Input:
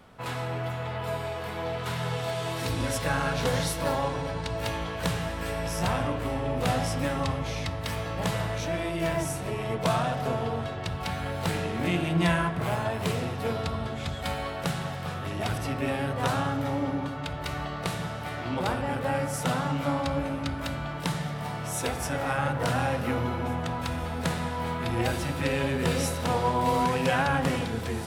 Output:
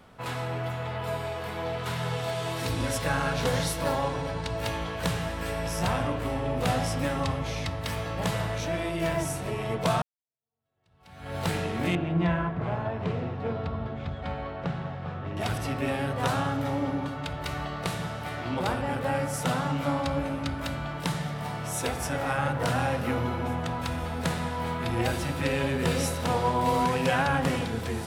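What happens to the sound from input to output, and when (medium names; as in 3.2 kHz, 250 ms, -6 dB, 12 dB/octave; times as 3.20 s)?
10.02–11.36 s: fade in exponential
11.95–15.37 s: tape spacing loss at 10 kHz 32 dB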